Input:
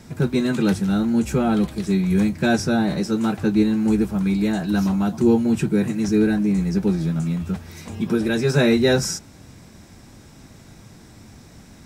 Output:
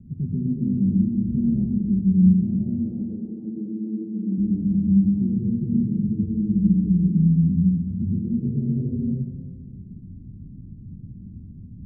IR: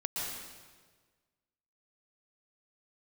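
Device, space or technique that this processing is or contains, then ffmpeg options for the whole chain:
club heard from the street: -filter_complex "[0:a]asettb=1/sr,asplit=3[a][b][c];[a]atrim=end=2.664[d];[b]atrim=start=2.66:end=4.38,asetpts=PTS-STARTPTS,afade=t=in:d=0.004:c=qsin,afade=t=out:st=1.716:d=0.004:c=qsin,highpass=f=260:w=0.5412,highpass=f=260:w=1.3066[e];[c]atrim=start=4.376[f];[d][e]acrossfade=d=0.004:c1=hsin:c2=qsin[g];[g][f]acrossfade=d=0.004:c1=qsin:c2=hsin,alimiter=limit=-17.5dB:level=0:latency=1:release=457,lowpass=f=230:w=0.5412,lowpass=f=230:w=1.3066[h];[1:a]atrim=start_sample=2205[i];[h][i]afir=irnorm=-1:irlink=0,volume=3dB"

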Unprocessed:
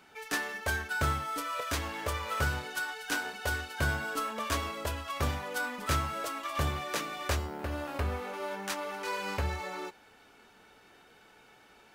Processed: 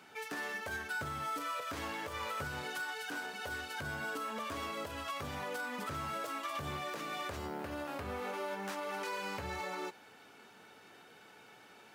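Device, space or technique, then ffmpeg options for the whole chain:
podcast mastering chain: -af "highpass=f=100:w=0.5412,highpass=f=100:w=1.3066,deesser=0.9,acompressor=threshold=-36dB:ratio=2,alimiter=level_in=7dB:limit=-24dB:level=0:latency=1:release=163,volume=-7dB,volume=1.5dB" -ar 48000 -c:a libmp3lame -b:a 96k

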